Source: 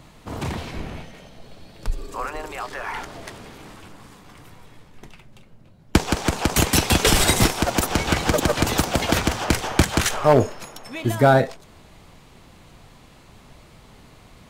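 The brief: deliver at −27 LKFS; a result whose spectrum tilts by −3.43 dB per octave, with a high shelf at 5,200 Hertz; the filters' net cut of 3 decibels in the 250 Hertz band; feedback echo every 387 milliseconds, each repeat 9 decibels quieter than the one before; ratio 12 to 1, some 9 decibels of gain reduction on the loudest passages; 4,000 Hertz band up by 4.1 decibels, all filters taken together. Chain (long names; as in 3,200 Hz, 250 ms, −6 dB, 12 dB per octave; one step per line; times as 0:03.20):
parametric band 250 Hz −4 dB
parametric band 4,000 Hz +8 dB
high-shelf EQ 5,200 Hz −6.5 dB
downward compressor 12 to 1, threshold −20 dBFS
repeating echo 387 ms, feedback 35%, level −9 dB
level −0.5 dB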